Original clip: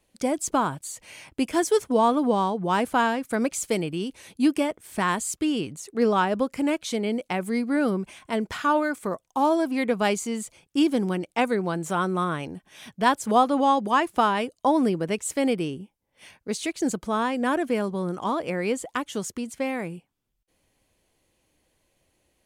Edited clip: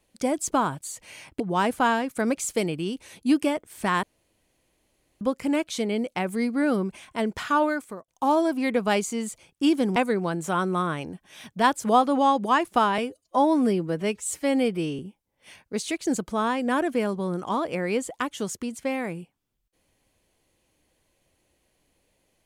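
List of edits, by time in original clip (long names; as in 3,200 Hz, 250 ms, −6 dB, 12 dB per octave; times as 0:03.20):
0:01.40–0:02.54: remove
0:05.17–0:06.35: fill with room tone
0:08.84–0:09.22: fade out
0:11.10–0:11.38: remove
0:14.40–0:15.74: time-stretch 1.5×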